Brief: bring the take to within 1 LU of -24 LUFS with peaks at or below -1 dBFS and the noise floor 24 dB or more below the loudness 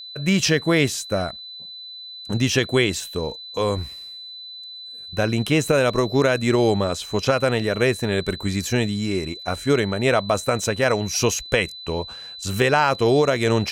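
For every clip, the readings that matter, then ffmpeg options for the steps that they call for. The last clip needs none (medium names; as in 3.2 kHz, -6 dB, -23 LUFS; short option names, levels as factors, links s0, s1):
steady tone 4 kHz; tone level -35 dBFS; loudness -21.5 LUFS; peak level -4.5 dBFS; loudness target -24.0 LUFS
-> -af "bandreject=f=4000:w=30"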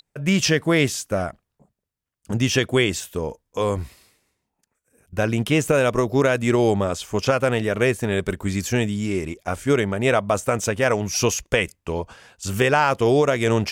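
steady tone not found; loudness -21.5 LUFS; peak level -4.5 dBFS; loudness target -24.0 LUFS
-> -af "volume=0.75"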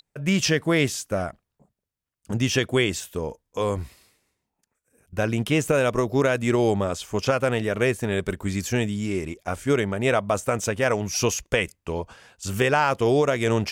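loudness -24.0 LUFS; peak level -7.0 dBFS; noise floor -82 dBFS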